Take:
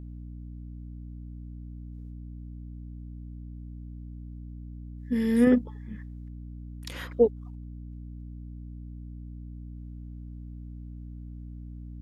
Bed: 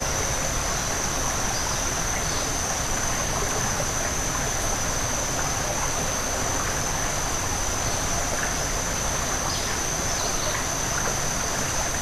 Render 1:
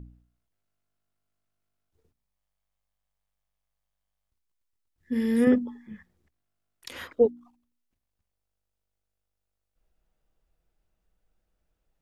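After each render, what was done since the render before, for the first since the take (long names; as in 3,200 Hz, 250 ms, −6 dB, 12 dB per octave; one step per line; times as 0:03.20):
hum removal 60 Hz, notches 5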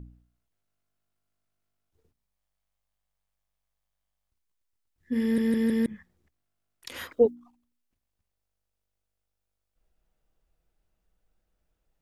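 0:05.22: stutter in place 0.16 s, 4 plays
0:06.94–0:07.35: high-shelf EQ 6,000 Hz +9 dB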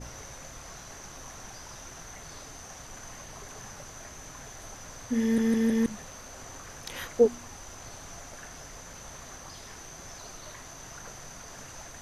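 mix in bed −19 dB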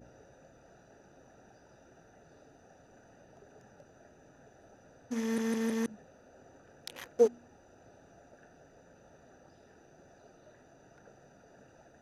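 adaptive Wiener filter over 41 samples
high-pass filter 500 Hz 6 dB per octave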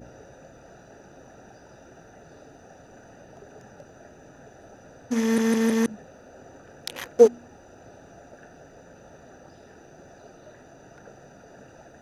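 level +10 dB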